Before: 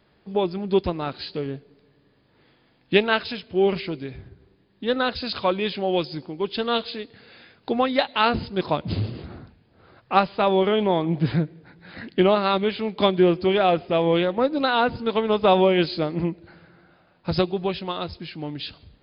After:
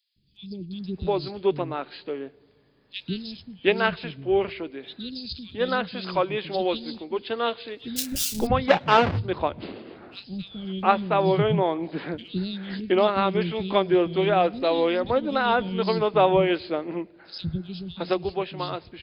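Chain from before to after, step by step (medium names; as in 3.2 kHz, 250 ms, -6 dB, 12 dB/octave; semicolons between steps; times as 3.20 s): 7.96–8.47 s: square wave that keeps the level; three bands offset in time highs, lows, mids 160/720 ms, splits 240/3700 Hz; trim -1 dB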